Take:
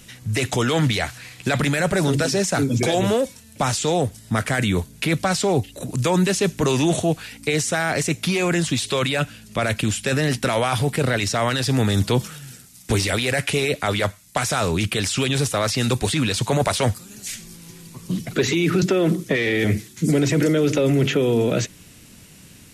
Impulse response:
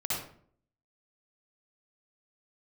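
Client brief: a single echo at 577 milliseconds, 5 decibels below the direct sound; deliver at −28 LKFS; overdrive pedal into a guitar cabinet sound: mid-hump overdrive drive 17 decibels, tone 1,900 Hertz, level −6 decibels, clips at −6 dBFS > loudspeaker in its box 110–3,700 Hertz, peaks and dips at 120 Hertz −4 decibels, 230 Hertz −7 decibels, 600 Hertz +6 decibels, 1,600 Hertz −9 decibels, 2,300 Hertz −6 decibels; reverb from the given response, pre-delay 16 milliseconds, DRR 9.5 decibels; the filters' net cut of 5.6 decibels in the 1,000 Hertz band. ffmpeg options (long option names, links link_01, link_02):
-filter_complex "[0:a]equalizer=frequency=1000:width_type=o:gain=-9,aecho=1:1:577:0.562,asplit=2[link_01][link_02];[1:a]atrim=start_sample=2205,adelay=16[link_03];[link_02][link_03]afir=irnorm=-1:irlink=0,volume=-15.5dB[link_04];[link_01][link_04]amix=inputs=2:normalize=0,asplit=2[link_05][link_06];[link_06]highpass=frequency=720:poles=1,volume=17dB,asoftclip=type=tanh:threshold=-6dB[link_07];[link_05][link_07]amix=inputs=2:normalize=0,lowpass=frequency=1900:poles=1,volume=-6dB,highpass=110,equalizer=frequency=120:width_type=q:width=4:gain=-4,equalizer=frequency=230:width_type=q:width=4:gain=-7,equalizer=frequency=600:width_type=q:width=4:gain=6,equalizer=frequency=1600:width_type=q:width=4:gain=-9,equalizer=frequency=2300:width_type=q:width=4:gain=-6,lowpass=frequency=3700:width=0.5412,lowpass=frequency=3700:width=1.3066,volume=-9dB"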